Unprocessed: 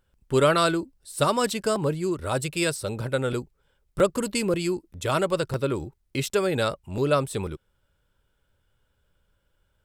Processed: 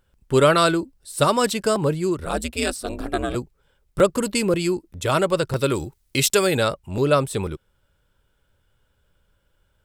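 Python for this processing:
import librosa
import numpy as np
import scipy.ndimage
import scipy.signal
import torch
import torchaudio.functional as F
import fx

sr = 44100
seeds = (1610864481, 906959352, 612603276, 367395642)

y = fx.ring_mod(x, sr, carrier_hz=fx.line((2.24, 69.0), (3.34, 200.0)), at=(2.24, 3.34), fade=0.02)
y = fx.high_shelf(y, sr, hz=2600.0, db=10.5, at=(5.56, 6.58))
y = y * 10.0 ** (4.0 / 20.0)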